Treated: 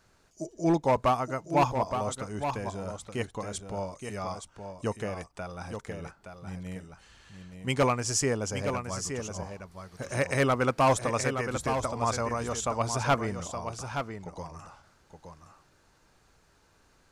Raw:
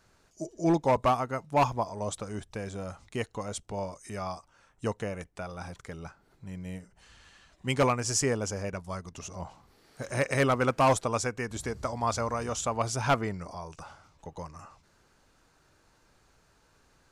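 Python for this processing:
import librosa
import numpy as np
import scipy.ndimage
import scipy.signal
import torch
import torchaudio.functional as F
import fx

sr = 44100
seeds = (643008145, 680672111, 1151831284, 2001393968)

y = x + 10.0 ** (-7.5 / 20.0) * np.pad(x, (int(870 * sr / 1000.0), 0))[:len(x)]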